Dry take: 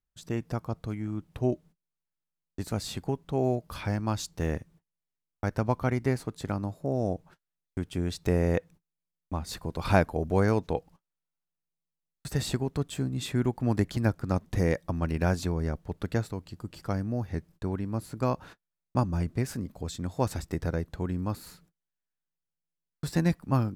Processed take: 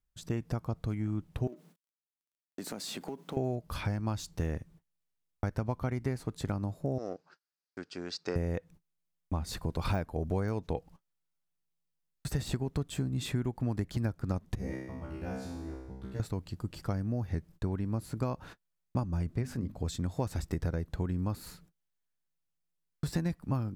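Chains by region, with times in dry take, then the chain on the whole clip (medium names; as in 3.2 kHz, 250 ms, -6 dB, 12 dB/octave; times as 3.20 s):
1.47–3.37 s: companding laws mixed up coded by mu + high-pass 200 Hz 24 dB/octave + compression 10:1, threshold -35 dBFS
6.98–8.36 s: partial rectifier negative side -3 dB + cabinet simulation 430–6400 Hz, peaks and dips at 630 Hz -6 dB, 920 Hz -5 dB, 1.5 kHz +4 dB, 2.1 kHz -4 dB, 3.3 kHz -7 dB, 4.8 kHz +9 dB
14.55–16.20 s: bass shelf 360 Hz +5.5 dB + feedback comb 65 Hz, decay 1 s, mix 100%
19.36–19.81 s: treble shelf 5 kHz -7.5 dB + hum notches 50/100/150/200/250/300 Hz
whole clip: de-esser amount 80%; bass shelf 130 Hz +6 dB; compression 6:1, threshold -28 dBFS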